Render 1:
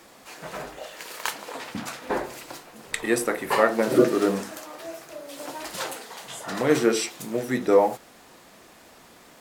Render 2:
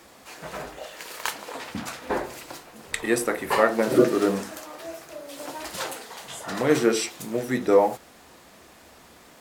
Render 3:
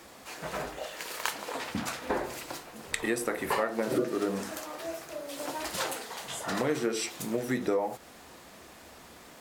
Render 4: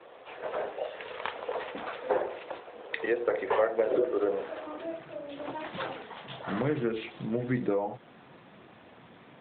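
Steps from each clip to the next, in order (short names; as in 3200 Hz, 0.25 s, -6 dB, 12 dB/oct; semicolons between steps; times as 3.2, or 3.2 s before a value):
bell 72 Hz +10 dB 0.46 oct
compressor 5:1, threshold -26 dBFS, peak gain reduction 13 dB
high-pass sweep 470 Hz -> 120 Hz, 4.56–5.12; gain -1 dB; AMR-NB 12.2 kbps 8000 Hz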